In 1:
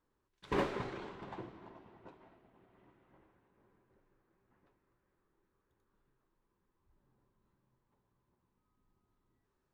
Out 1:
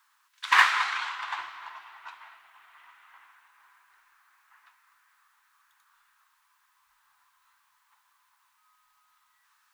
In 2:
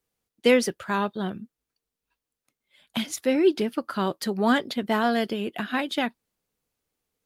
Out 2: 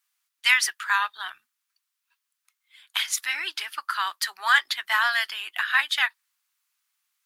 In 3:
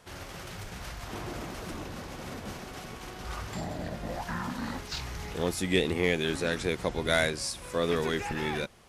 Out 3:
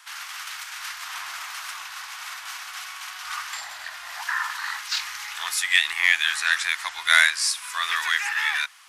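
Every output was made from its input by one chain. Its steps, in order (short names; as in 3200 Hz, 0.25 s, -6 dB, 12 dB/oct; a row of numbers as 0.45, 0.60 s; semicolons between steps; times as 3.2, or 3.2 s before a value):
inverse Chebyshev high-pass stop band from 540 Hz, stop band 40 dB; dynamic EQ 1800 Hz, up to +6 dB, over -50 dBFS, Q 5.4; match loudness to -24 LUFS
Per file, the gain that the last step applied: +21.0, +6.5, +10.5 dB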